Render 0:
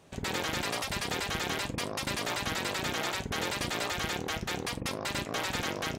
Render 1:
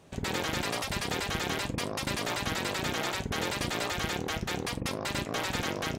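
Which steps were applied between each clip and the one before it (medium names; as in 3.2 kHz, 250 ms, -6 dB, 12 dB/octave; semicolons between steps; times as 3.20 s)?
bass shelf 490 Hz +3 dB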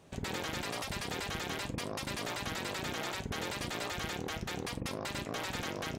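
peak limiter -26 dBFS, peak gain reduction 4.5 dB; trim -2.5 dB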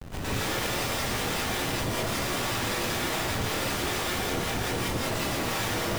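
Schmitt trigger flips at -52.5 dBFS; bit crusher 7-bit; gated-style reverb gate 190 ms rising, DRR -5.5 dB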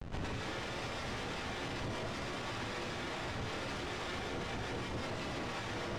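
peak limiter -27 dBFS, peak gain reduction 10 dB; distance through air 100 m; trim -3 dB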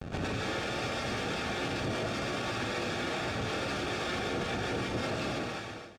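fade out at the end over 0.70 s; comb of notches 1 kHz; delay 253 ms -15.5 dB; trim +7.5 dB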